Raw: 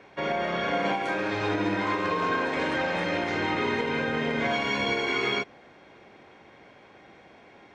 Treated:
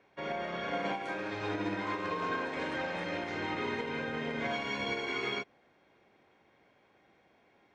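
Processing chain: upward expander 1.5:1, over -39 dBFS; gain -6.5 dB

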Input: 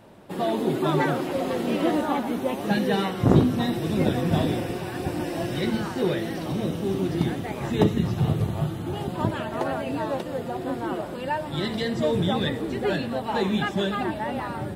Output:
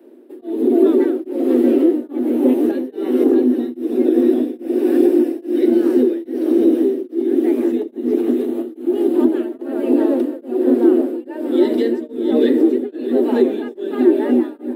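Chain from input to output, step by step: resonant low shelf 590 Hz +12.5 dB, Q 1.5; compressor, threshold -12 dBFS, peak gain reduction 13.5 dB; rippled Chebyshev high-pass 240 Hz, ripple 6 dB; echo with dull and thin repeats by turns 0.315 s, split 930 Hz, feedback 60%, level -4 dB; AGC; EQ curve 440 Hz 0 dB, 1000 Hz -8 dB, 1700 Hz -1 dB, 6700 Hz -5 dB, 13000 Hz +7 dB; beating tremolo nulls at 1.2 Hz

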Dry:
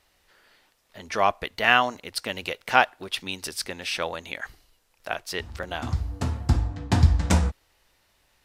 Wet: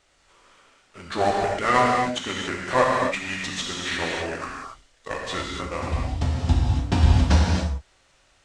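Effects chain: CVSD 64 kbps; formant shift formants -6 st; non-linear reverb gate 0.31 s flat, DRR -2.5 dB

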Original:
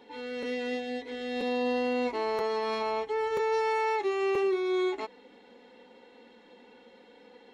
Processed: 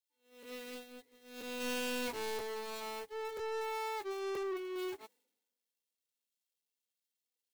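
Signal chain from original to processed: switching spikes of -37 dBFS; 3.09–4.76 low shelf 210 Hz -5.5 dB; soft clip -36 dBFS, distortion -7 dB; 1.6–2.38 sample leveller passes 2; gate -38 dBFS, range -25 dB; three-band expander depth 100%; gain +5 dB

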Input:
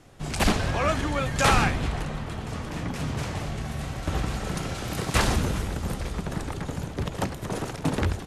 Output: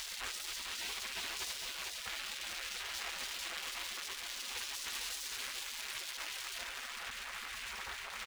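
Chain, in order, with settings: infinite clipping; HPF 100 Hz 12 dB/oct; limiter -30.5 dBFS, peak gain reduction 11 dB; LPF 2300 Hz 6 dB/oct, from 6.63 s 1100 Hz; spectral gate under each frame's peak -20 dB weak; notch comb 150 Hz; echo 0.45 s -5.5 dB; gain +10 dB

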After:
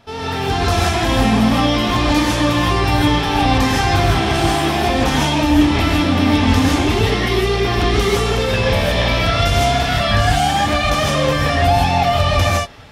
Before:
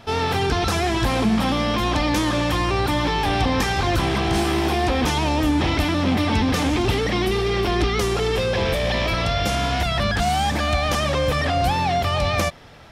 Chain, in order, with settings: AGC gain up to 6.5 dB; non-linear reverb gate 0.18 s rising, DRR -4.5 dB; gain -6 dB

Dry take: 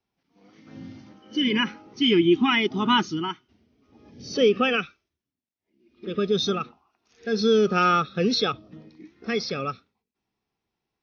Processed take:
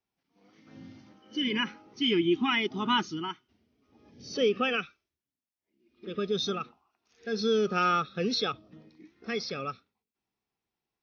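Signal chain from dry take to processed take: low shelf 440 Hz -3 dB; gain -5 dB

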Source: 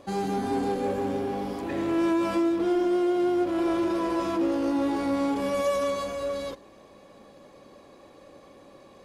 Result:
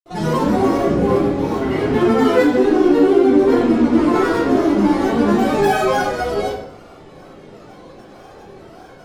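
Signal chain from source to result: grains, pitch spread up and down by 7 st; shoebox room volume 150 m³, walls mixed, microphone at 3.3 m

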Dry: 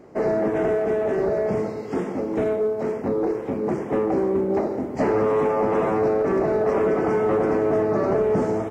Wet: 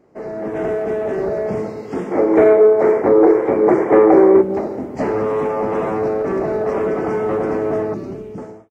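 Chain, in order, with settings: ending faded out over 0.95 s; AGC gain up to 10 dB; 2.12–4.42 spectral gain 290–2400 Hz +11 dB; 7.94–8.38 band shelf 960 Hz -13 dB 2.4 oct; gain -8 dB

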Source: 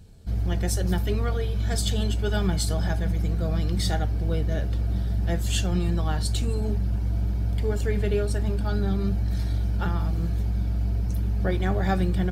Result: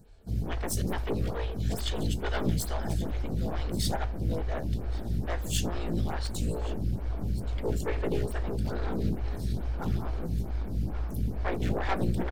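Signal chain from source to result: one-sided fold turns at -24.5 dBFS; echo 1.127 s -16.5 dB; photocell phaser 2.3 Hz

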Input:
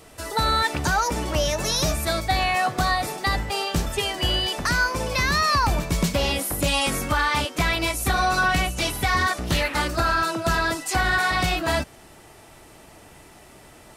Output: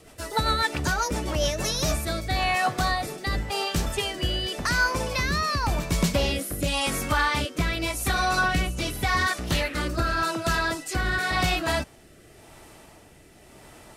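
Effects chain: rotary speaker horn 7.5 Hz, later 0.9 Hz, at 1.22

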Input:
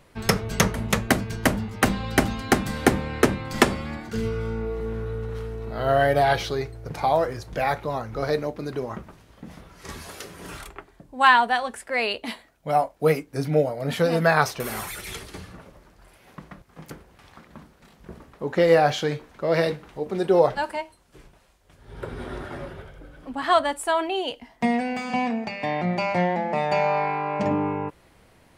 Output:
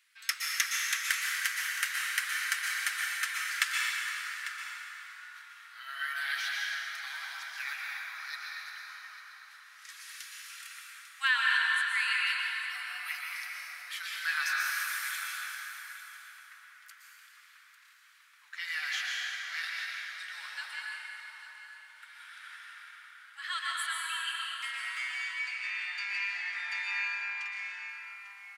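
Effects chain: steep high-pass 1500 Hz 36 dB/oct; on a send: echo 0.847 s -13.5 dB; on the sum: plate-style reverb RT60 4.8 s, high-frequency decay 0.5×, pre-delay 0.105 s, DRR -4.5 dB; gain -6.5 dB

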